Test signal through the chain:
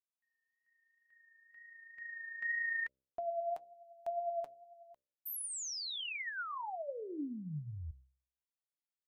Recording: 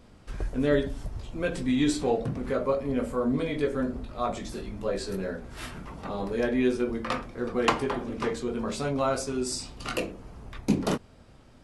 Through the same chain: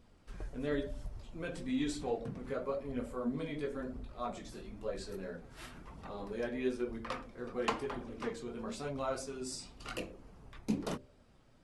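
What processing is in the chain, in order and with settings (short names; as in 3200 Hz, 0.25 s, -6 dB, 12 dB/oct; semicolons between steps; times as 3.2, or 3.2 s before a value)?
wow and flutter 16 cents; de-hum 65.43 Hz, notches 9; flange 1 Hz, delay 0.2 ms, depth 7.4 ms, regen +55%; gain -6 dB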